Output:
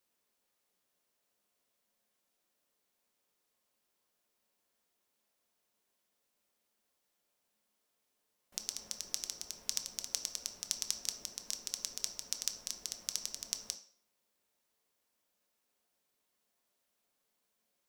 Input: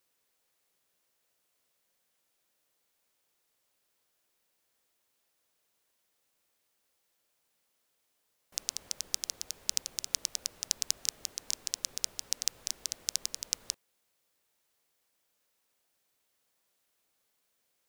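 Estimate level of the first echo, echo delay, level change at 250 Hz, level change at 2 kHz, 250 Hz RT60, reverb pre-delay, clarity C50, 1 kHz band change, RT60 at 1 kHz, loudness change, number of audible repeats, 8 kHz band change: none, none, 0.0 dB, -4.5 dB, 0.40 s, 3 ms, 11.0 dB, -2.5 dB, 0.50 s, -4.5 dB, none, -4.5 dB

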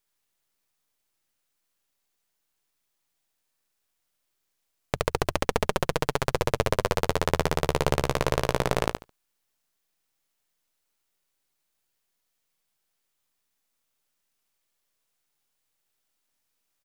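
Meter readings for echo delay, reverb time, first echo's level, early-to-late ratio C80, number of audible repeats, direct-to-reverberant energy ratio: 72 ms, none, -4.0 dB, none, 2, none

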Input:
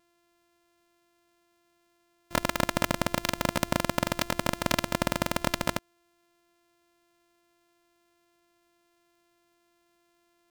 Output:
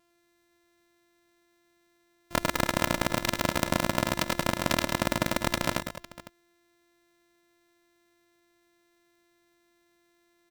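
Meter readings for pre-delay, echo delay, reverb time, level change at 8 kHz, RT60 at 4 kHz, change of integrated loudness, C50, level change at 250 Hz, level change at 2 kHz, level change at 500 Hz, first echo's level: none, 0.105 s, none, +1.0 dB, none, +1.0 dB, none, +1.0 dB, +1.5 dB, +0.5 dB, -7.5 dB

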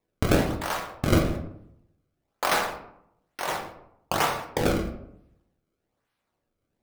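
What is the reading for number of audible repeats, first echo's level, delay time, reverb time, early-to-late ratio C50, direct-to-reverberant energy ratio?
none, none, none, 0.75 s, 7.5 dB, 2.0 dB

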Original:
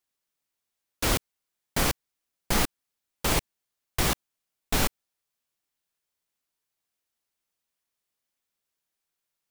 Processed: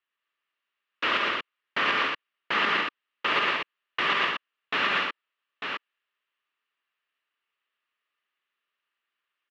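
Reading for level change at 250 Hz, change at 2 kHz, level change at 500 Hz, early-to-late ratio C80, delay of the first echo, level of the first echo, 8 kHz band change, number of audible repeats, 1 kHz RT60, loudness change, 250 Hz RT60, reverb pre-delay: -5.5 dB, +9.5 dB, -0.5 dB, none, 0.112 s, -5.0 dB, under -20 dB, 4, none, +1.5 dB, none, none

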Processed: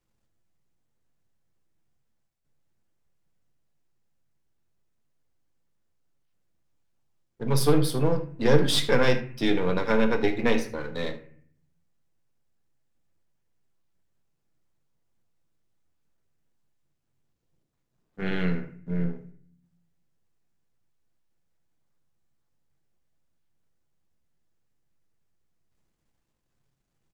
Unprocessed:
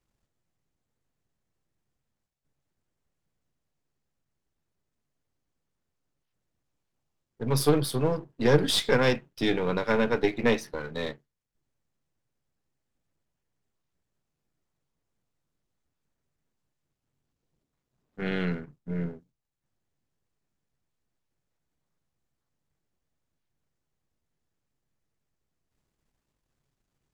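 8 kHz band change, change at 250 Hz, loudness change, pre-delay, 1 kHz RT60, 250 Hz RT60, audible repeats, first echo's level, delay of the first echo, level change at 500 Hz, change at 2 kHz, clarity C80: +0.5 dB, +2.0 dB, +1.0 dB, 6 ms, 0.50 s, 0.85 s, 1, -16.5 dB, 76 ms, +1.0 dB, +0.5 dB, 16.0 dB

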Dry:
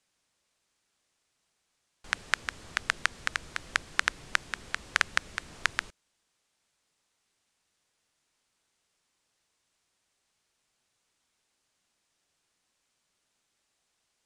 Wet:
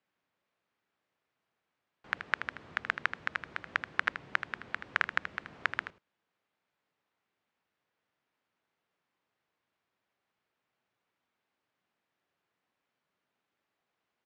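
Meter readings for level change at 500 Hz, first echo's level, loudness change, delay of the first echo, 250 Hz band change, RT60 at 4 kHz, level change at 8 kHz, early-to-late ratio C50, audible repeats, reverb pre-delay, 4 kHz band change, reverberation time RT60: -1.0 dB, -10.0 dB, -3.5 dB, 79 ms, -1.0 dB, none, under -20 dB, none, 1, none, -9.5 dB, none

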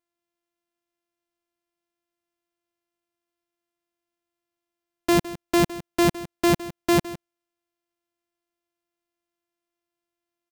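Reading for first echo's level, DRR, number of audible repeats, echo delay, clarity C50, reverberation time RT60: -16.0 dB, none, 1, 0.16 s, none, none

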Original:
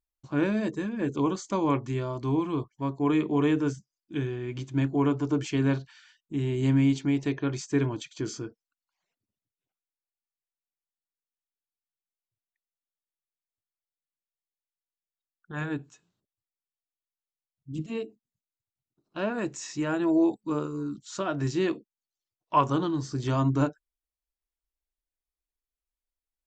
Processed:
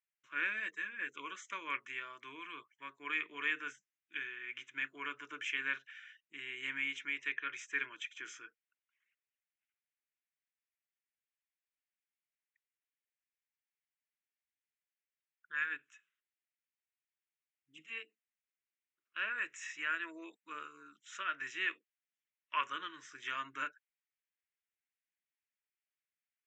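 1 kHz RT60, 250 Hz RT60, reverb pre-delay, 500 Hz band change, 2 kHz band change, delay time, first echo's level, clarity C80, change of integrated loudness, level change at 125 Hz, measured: none, none, none, -26.0 dB, +3.5 dB, none, none, none, -11.0 dB, under -40 dB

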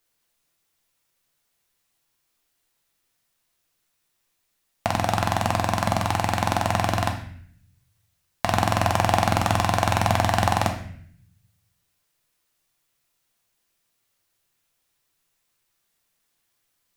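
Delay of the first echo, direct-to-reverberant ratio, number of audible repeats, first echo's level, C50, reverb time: none, 3.0 dB, none, none, 8.5 dB, 0.65 s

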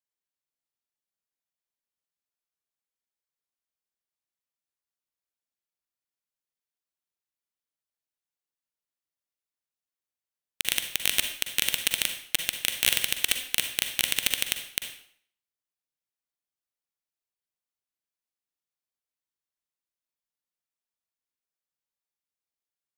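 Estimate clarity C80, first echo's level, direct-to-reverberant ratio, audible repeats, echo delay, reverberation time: 10.5 dB, none, 6.0 dB, none, none, 0.60 s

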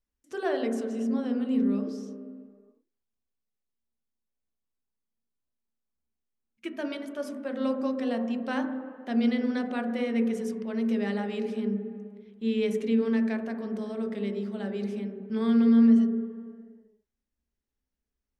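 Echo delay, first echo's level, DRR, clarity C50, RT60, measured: none, none, 4.0 dB, 7.0 dB, 2.1 s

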